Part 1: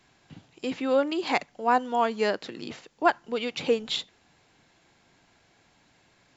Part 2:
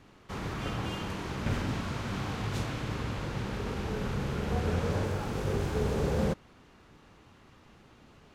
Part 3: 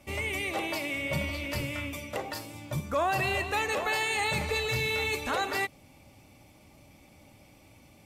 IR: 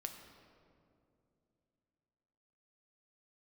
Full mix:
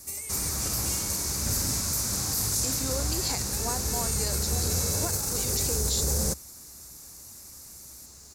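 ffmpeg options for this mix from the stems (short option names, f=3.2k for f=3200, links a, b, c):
-filter_complex "[0:a]acompressor=threshold=-24dB:ratio=6,adelay=2000,volume=-7.5dB[a];[1:a]equalizer=f=66:w=2.9:g=13.5,volume=-2.5dB[b];[2:a]acompressor=threshold=-36dB:ratio=6,volume=-10dB[c];[a][b][c]amix=inputs=3:normalize=0,aexciter=amount=13.1:drive=9.2:freq=4.9k,alimiter=limit=-17dB:level=0:latency=1:release=26"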